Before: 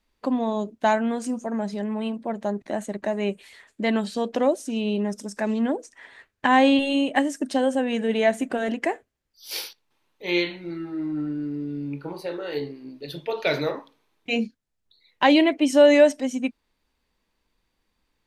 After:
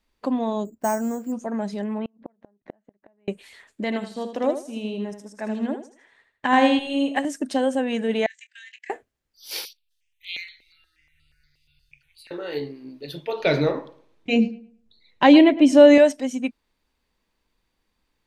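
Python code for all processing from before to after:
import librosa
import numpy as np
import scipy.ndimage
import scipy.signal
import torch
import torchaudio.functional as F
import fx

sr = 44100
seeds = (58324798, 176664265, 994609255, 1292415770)

y = fx.chain(x, sr, fx.spacing_loss(db_at_10k=43),
    fx.resample_bad(factor=6, down='filtered', up='hold'), at=(0.65, 1.32))
y = fx.chain(y, sr, fx.lowpass(hz=2100.0, slope=12),
    fx.gate_flip(shuts_db=-21.0, range_db=-38), at=(1.98, 3.28))
y = fx.chain(y, sr, fx.echo_feedback(ms=79, feedback_pct=36, wet_db=-7),
    fx.upward_expand(threshold_db=-37.0, expansion=1.5), at=(3.84, 7.25))
y = fx.chain(y, sr, fx.cheby1_bandpass(low_hz=1700.0, high_hz=7800.0, order=5),
    fx.level_steps(step_db=22),
    fx.doubler(ms=25.0, db=-11.0), at=(8.26, 8.9))
y = fx.chain(y, sr, fx.cheby2_bandstop(low_hz=170.0, high_hz=980.0, order=4, stop_db=50),
    fx.phaser_held(hz=8.4, low_hz=420.0, high_hz=5900.0), at=(9.65, 12.31))
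y = fx.chain(y, sr, fx.lowpass(hz=9000.0, slope=12),
    fx.low_shelf(hz=410.0, db=9.5),
    fx.echo_filtered(ms=109, feedback_pct=27, hz=2500.0, wet_db=-16.5), at=(13.4, 15.98))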